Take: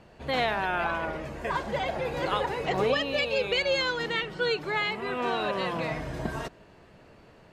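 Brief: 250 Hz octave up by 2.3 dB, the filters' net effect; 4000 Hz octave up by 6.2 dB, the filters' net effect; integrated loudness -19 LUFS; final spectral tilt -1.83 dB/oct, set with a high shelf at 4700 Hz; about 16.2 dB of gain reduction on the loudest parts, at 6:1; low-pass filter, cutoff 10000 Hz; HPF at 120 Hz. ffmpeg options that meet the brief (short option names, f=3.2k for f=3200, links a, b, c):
-af "highpass=120,lowpass=10k,equalizer=f=250:t=o:g=3.5,equalizer=f=4k:t=o:g=4.5,highshelf=f=4.7k:g=8,acompressor=threshold=-38dB:ratio=6,volume=21dB"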